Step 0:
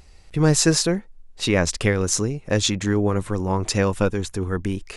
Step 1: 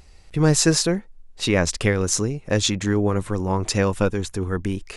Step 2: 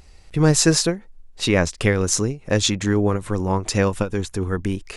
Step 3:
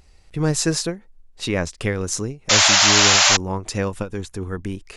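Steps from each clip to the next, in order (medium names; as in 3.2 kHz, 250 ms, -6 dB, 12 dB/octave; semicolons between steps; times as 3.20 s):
no audible change
endings held to a fixed fall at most 220 dB/s; trim +1.5 dB
painted sound noise, 2.49–3.37 s, 560–7400 Hz -10 dBFS; trim -4.5 dB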